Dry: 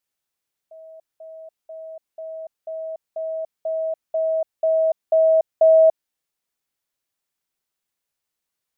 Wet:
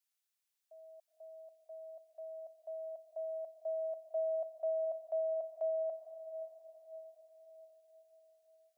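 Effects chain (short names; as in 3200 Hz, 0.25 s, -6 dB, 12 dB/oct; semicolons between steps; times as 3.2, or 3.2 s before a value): HPF 550 Hz 24 dB/oct; bell 710 Hz -8.5 dB 3 oct; limiter -28 dBFS, peak gain reduction 9.5 dB; on a send: diffused feedback echo 0.496 s, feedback 51%, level -10 dB; on the sum: gain -3 dB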